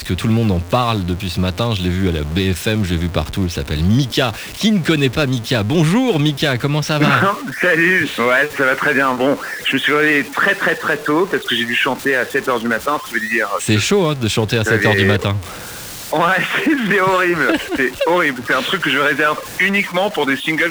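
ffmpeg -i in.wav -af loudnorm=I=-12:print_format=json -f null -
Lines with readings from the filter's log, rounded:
"input_i" : "-16.0",
"input_tp" : "-2.3",
"input_lra" : "2.8",
"input_thresh" : "-26.1",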